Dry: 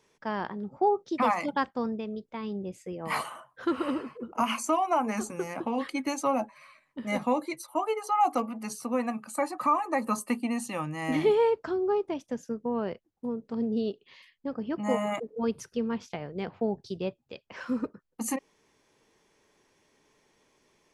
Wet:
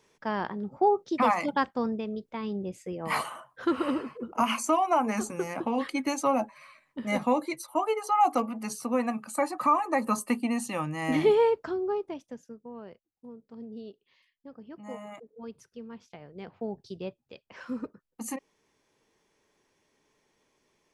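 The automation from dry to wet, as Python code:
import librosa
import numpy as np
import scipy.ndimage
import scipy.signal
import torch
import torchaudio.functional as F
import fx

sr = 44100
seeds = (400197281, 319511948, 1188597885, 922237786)

y = fx.gain(x, sr, db=fx.line((11.38, 1.5), (12.15, -5.0), (12.62, -13.0), (15.88, -13.0), (16.81, -4.5)))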